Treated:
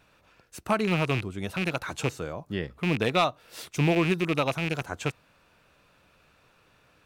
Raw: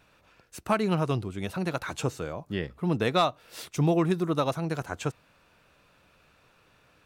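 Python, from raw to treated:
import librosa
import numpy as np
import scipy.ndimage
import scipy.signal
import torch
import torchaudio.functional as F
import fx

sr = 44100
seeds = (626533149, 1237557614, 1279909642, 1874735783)

y = fx.rattle_buzz(x, sr, strikes_db=-31.0, level_db=-20.0)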